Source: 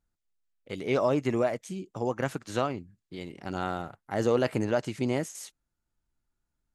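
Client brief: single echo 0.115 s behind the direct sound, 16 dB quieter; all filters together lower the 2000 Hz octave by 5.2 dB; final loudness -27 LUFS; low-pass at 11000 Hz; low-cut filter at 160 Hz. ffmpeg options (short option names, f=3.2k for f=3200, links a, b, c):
-af "highpass=160,lowpass=11k,equalizer=f=2k:t=o:g=-7,aecho=1:1:115:0.158,volume=4dB"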